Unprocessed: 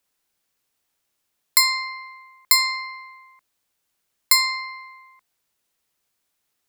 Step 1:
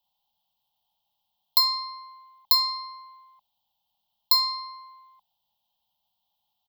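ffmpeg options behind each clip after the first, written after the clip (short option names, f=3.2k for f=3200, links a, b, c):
-af "firequalizer=gain_entry='entry(220,0);entry(340,-28);entry(550,-5);entry(830,14);entry(1500,-28);entry(2200,-20);entry(3100,9);entry(6400,-12);entry(9300,-20);entry(14000,1)':delay=0.05:min_phase=1,volume=-3dB"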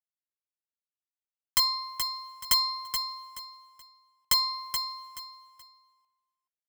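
-af "aeval=exprs='(mod(3.35*val(0)+1,2)-1)/3.35':c=same,acrusher=bits=9:mix=0:aa=0.000001,aecho=1:1:427|854|1281:0.422|0.11|0.0285,volume=-3dB"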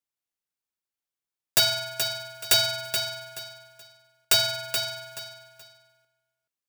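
-af "aeval=exprs='val(0)*sgn(sin(2*PI*390*n/s))':c=same,volume=3.5dB"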